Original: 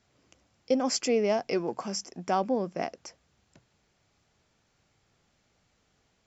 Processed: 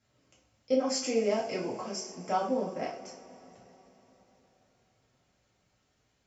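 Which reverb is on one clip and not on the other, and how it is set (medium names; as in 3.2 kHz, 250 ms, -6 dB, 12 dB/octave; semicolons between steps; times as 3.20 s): two-slope reverb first 0.37 s, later 4.2 s, from -22 dB, DRR -5 dB; trim -9 dB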